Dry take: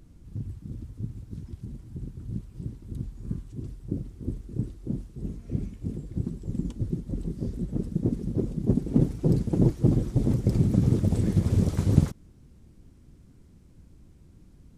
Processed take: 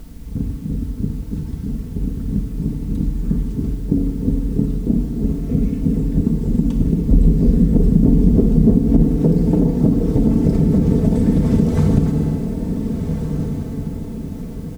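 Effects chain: treble shelf 2.8 kHz -10 dB; comb 4.5 ms, depth 70%; FDN reverb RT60 1.5 s, low-frequency decay 0.75×, high-frequency decay 0.9×, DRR 3.5 dB; compression 10:1, threshold -25 dBFS, peak gain reduction 13.5 dB; echo that smears into a reverb 1506 ms, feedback 45%, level -7 dB; added noise white -68 dBFS; 7.06–9.09 s: bass shelf 160 Hz +6.5 dB; loudness maximiser +14.5 dB; trim -1 dB

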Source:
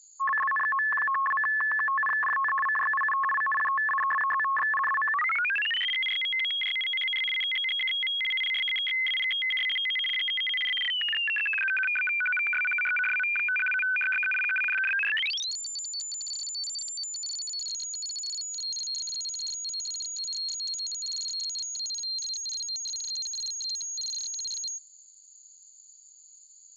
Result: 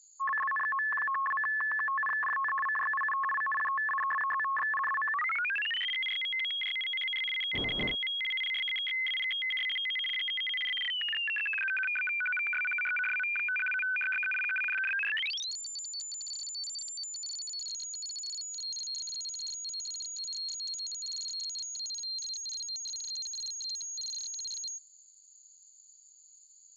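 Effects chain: 7.53–7.94 s: wind noise 440 Hz -32 dBFS; trim -4.5 dB

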